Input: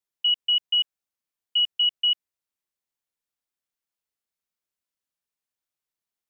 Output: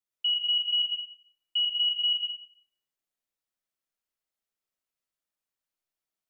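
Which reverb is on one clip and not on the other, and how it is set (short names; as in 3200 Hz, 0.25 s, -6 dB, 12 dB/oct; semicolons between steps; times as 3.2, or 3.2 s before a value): digital reverb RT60 1 s, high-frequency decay 0.45×, pre-delay 60 ms, DRR -2.5 dB; gain -5 dB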